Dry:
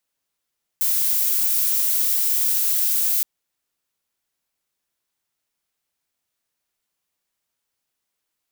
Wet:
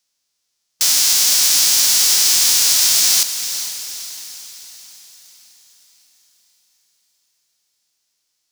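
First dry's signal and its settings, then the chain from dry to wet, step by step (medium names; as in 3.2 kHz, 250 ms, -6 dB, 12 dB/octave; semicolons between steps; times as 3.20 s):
noise violet, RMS -20 dBFS 2.42 s
formants flattened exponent 0.3; peaking EQ 5.4 kHz +14.5 dB 1.4 oct; echo that smears into a reverb 451 ms, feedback 50%, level -10 dB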